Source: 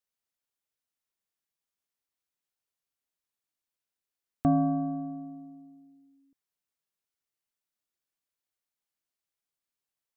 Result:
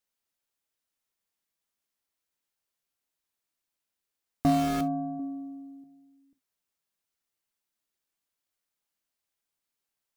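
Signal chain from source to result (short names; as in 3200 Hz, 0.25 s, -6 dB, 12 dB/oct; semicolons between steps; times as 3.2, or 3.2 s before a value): 5.19–5.84 comb 3.4 ms, depth 78%; in parallel at -7 dB: wrapped overs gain 26.5 dB; on the sum: non-linear reverb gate 90 ms falling, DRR 9.5 dB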